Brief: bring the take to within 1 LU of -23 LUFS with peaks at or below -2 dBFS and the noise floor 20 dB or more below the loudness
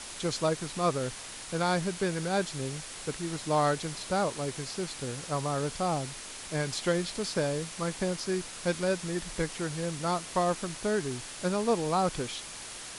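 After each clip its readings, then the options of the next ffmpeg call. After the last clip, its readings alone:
noise floor -43 dBFS; noise floor target -52 dBFS; loudness -31.5 LUFS; peak -14.5 dBFS; loudness target -23.0 LUFS
-> -af "afftdn=nr=9:nf=-43"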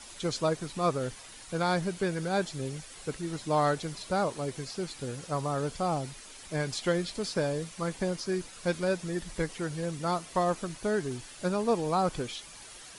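noise floor -48 dBFS; noise floor target -52 dBFS
-> -af "afftdn=nr=6:nf=-48"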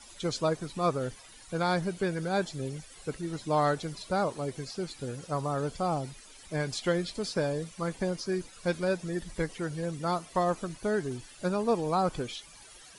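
noise floor -52 dBFS; loudness -32.0 LUFS; peak -15.0 dBFS; loudness target -23.0 LUFS
-> -af "volume=9dB"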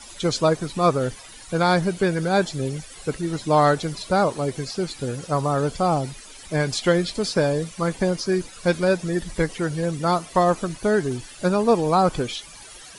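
loudness -23.0 LUFS; peak -6.0 dBFS; noise floor -43 dBFS

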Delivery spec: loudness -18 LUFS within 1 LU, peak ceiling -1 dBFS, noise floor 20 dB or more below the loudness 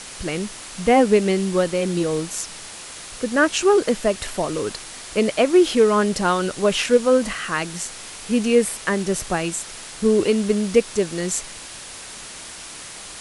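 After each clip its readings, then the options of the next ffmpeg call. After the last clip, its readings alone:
noise floor -37 dBFS; noise floor target -41 dBFS; loudness -20.5 LUFS; peak -3.5 dBFS; loudness target -18.0 LUFS
-> -af "afftdn=nr=6:nf=-37"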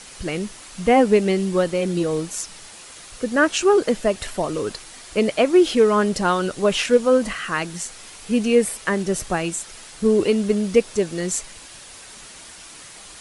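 noise floor -42 dBFS; loudness -20.5 LUFS; peak -4.0 dBFS; loudness target -18.0 LUFS
-> -af "volume=2.5dB"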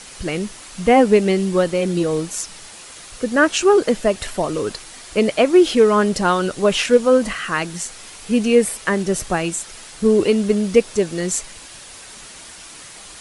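loudness -18.0 LUFS; peak -1.5 dBFS; noise floor -39 dBFS

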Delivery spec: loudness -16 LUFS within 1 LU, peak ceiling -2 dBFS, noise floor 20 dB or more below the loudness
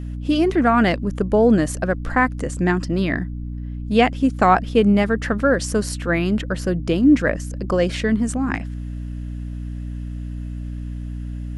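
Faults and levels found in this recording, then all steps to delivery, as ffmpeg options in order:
hum 60 Hz; harmonics up to 300 Hz; hum level -26 dBFS; loudness -19.5 LUFS; peak -2.5 dBFS; loudness target -16.0 LUFS
-> -af "bandreject=f=60:t=h:w=4,bandreject=f=120:t=h:w=4,bandreject=f=180:t=h:w=4,bandreject=f=240:t=h:w=4,bandreject=f=300:t=h:w=4"
-af "volume=3.5dB,alimiter=limit=-2dB:level=0:latency=1"

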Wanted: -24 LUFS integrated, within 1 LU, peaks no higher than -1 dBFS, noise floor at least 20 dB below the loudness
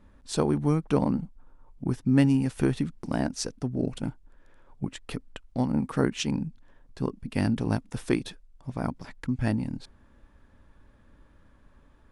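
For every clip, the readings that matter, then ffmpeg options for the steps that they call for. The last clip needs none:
loudness -29.0 LUFS; peak -7.0 dBFS; loudness target -24.0 LUFS
-> -af "volume=5dB"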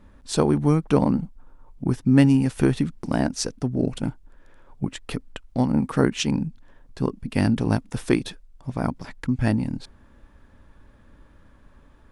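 loudness -24.0 LUFS; peak -2.0 dBFS; noise floor -53 dBFS

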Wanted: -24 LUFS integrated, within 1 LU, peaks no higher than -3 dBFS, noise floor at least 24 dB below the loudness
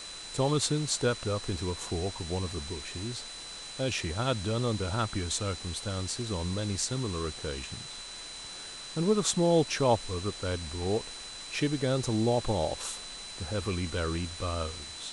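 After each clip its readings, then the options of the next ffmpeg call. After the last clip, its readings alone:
steady tone 4000 Hz; tone level -43 dBFS; noise floor -43 dBFS; noise floor target -56 dBFS; loudness -31.5 LUFS; peak -12.0 dBFS; loudness target -24.0 LUFS
-> -af "bandreject=f=4k:w=30"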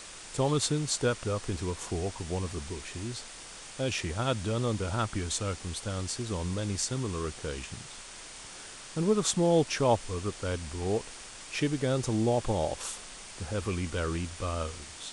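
steady tone none; noise floor -46 dBFS; noise floor target -56 dBFS
-> -af "afftdn=nr=10:nf=-46"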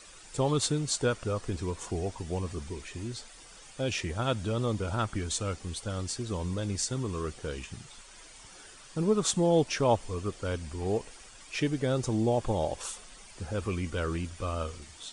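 noise floor -51 dBFS; noise floor target -56 dBFS
-> -af "afftdn=nr=6:nf=-51"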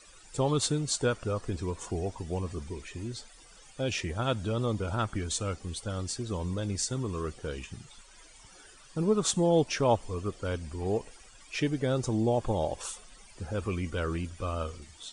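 noise floor -54 dBFS; noise floor target -56 dBFS
-> -af "afftdn=nr=6:nf=-54"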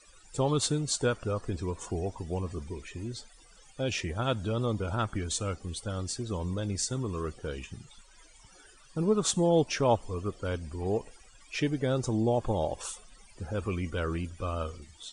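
noise floor -57 dBFS; loudness -31.5 LUFS; peak -11.5 dBFS; loudness target -24.0 LUFS
-> -af "volume=7.5dB"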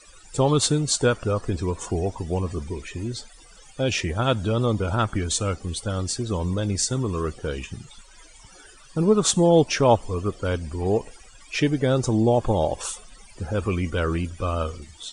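loudness -24.0 LUFS; peak -4.0 dBFS; noise floor -49 dBFS

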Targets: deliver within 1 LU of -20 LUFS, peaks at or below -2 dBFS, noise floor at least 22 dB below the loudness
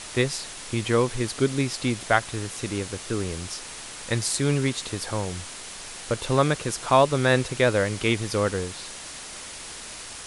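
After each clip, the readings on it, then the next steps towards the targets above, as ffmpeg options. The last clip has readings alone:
noise floor -39 dBFS; noise floor target -47 dBFS; loudness -25.0 LUFS; peak -4.0 dBFS; loudness target -20.0 LUFS
-> -af "afftdn=nr=8:nf=-39"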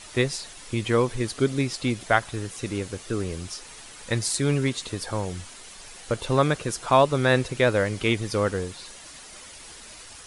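noise floor -45 dBFS; noise floor target -48 dBFS
-> -af "afftdn=nr=6:nf=-45"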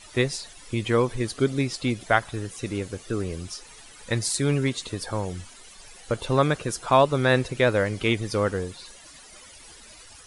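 noise floor -48 dBFS; loudness -25.5 LUFS; peak -4.0 dBFS; loudness target -20.0 LUFS
-> -af "volume=5.5dB,alimiter=limit=-2dB:level=0:latency=1"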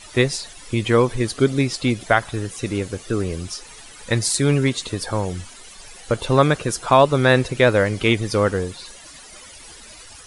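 loudness -20.0 LUFS; peak -2.0 dBFS; noise floor -42 dBFS

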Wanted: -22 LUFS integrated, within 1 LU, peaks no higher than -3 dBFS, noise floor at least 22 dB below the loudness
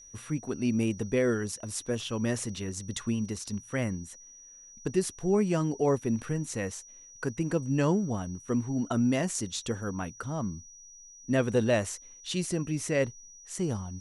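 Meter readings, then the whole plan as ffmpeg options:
steady tone 5800 Hz; tone level -49 dBFS; loudness -30.5 LUFS; peak -13.5 dBFS; loudness target -22.0 LUFS
-> -af "bandreject=f=5.8k:w=30"
-af "volume=8.5dB"

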